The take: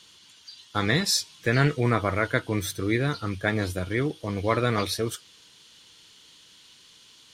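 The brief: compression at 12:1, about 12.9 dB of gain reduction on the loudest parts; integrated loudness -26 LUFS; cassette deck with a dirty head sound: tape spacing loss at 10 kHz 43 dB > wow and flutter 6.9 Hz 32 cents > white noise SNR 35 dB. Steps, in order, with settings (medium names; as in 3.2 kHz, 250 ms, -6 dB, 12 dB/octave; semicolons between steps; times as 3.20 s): compression 12:1, threshold -30 dBFS; tape spacing loss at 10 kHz 43 dB; wow and flutter 6.9 Hz 32 cents; white noise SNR 35 dB; trim +13 dB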